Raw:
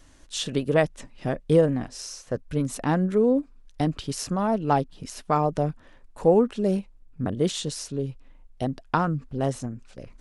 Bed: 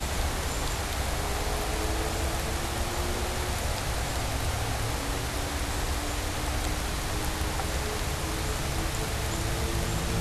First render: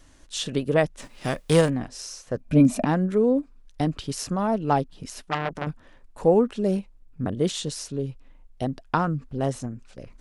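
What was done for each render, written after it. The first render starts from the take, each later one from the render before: 0.98–1.68 s: formants flattened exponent 0.6; 2.40–2.85 s: small resonant body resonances 230/630/2400 Hz, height 18 dB, ringing for 40 ms; 5.22–5.67 s: transformer saturation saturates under 1.7 kHz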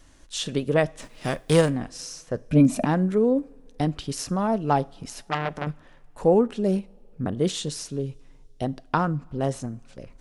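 two-slope reverb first 0.42 s, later 3 s, from -20 dB, DRR 18.5 dB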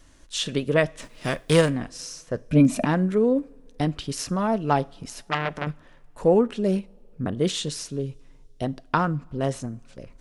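band-stop 790 Hz, Q 12; dynamic bell 2.4 kHz, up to +4 dB, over -40 dBFS, Q 0.71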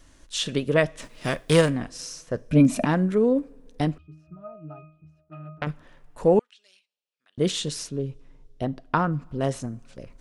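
3.98–5.62 s: pitch-class resonator D#, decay 0.44 s; 6.39–7.38 s: ladder band-pass 4.5 kHz, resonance 20%; 7.89–9.13 s: treble shelf 4 kHz -10 dB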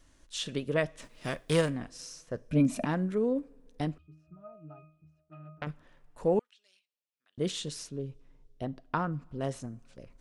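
trim -8 dB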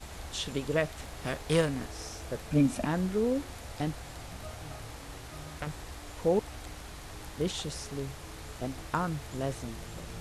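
add bed -14 dB

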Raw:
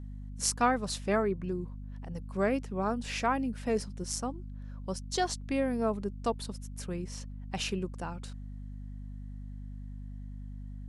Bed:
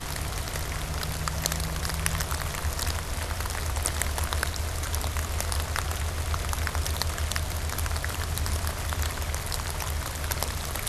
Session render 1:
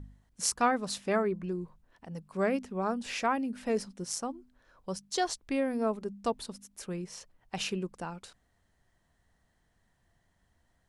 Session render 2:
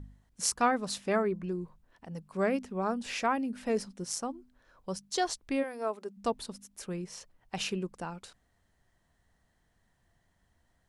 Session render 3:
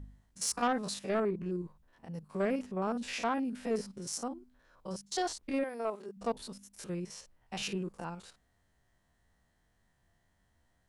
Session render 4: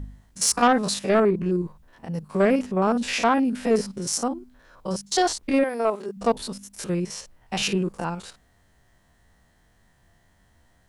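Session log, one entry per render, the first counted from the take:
de-hum 50 Hz, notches 5
5.62–6.16 s: high-pass 680 Hz -> 330 Hz
spectrogram pixelated in time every 50 ms; saturation -22 dBFS, distortion -16 dB
trim +12 dB

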